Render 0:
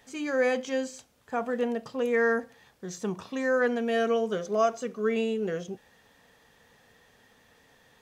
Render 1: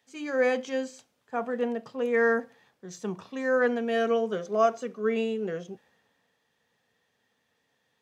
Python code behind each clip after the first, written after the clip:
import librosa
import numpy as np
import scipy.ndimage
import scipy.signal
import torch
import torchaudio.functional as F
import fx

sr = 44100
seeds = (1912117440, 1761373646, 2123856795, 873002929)

y = scipy.signal.sosfilt(scipy.signal.butter(2, 130.0, 'highpass', fs=sr, output='sos'), x)
y = fx.high_shelf(y, sr, hz=5700.0, db=-7.5)
y = fx.band_widen(y, sr, depth_pct=40)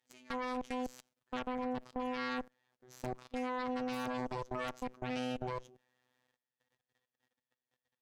y = fx.robotise(x, sr, hz=126.0)
y = fx.level_steps(y, sr, step_db=19)
y = fx.cheby_harmonics(y, sr, harmonics=(6,), levels_db=(-7,), full_scale_db=-24.5)
y = y * 10.0 ** (-4.0 / 20.0)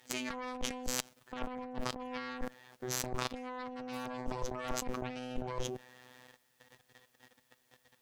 y = fx.over_compress(x, sr, threshold_db=-46.0, ratio=-0.5)
y = y * 10.0 ** (11.0 / 20.0)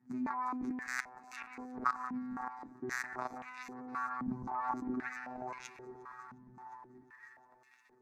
y = fx.fixed_phaser(x, sr, hz=1300.0, stages=4)
y = fx.echo_alternate(y, sr, ms=178, hz=1800.0, feedback_pct=84, wet_db=-10.5)
y = fx.filter_held_bandpass(y, sr, hz=3.8, low_hz=210.0, high_hz=2600.0)
y = y * 10.0 ** (14.0 / 20.0)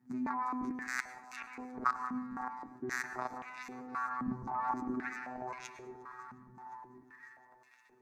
y = fx.rev_plate(x, sr, seeds[0], rt60_s=0.71, hf_ratio=0.65, predelay_ms=90, drr_db=13.5)
y = y * 10.0 ** (1.0 / 20.0)